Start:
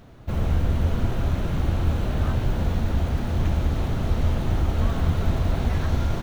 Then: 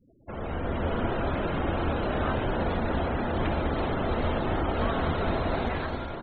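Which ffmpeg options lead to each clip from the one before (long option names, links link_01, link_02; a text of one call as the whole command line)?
ffmpeg -i in.wav -filter_complex "[0:a]afftfilt=real='re*gte(hypot(re,im),0.0112)':imag='im*gte(hypot(re,im),0.0112)':win_size=1024:overlap=0.75,dynaudnorm=framelen=180:gausssize=7:maxgain=11dB,acrossover=split=260 5400:gain=0.178 1 0.251[link_01][link_02][link_03];[link_01][link_02][link_03]amix=inputs=3:normalize=0,volume=-3dB" out.wav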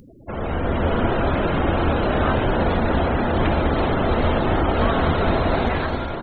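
ffmpeg -i in.wav -af "acompressor=mode=upward:threshold=-47dB:ratio=2.5,volume=8dB" out.wav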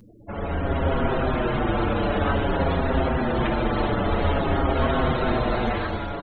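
ffmpeg -i in.wav -filter_complex "[0:a]asplit=2[link_01][link_02];[link_02]adelay=6.4,afreqshift=-0.52[link_03];[link_01][link_03]amix=inputs=2:normalize=1" out.wav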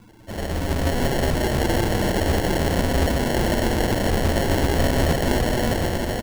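ffmpeg -i in.wav -af "acrusher=samples=36:mix=1:aa=0.000001,aecho=1:1:729:0.531,volume=1dB" out.wav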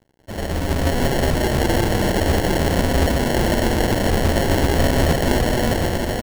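ffmpeg -i in.wav -af "aeval=exprs='sgn(val(0))*max(abs(val(0))-0.00531,0)':channel_layout=same,volume=3dB" out.wav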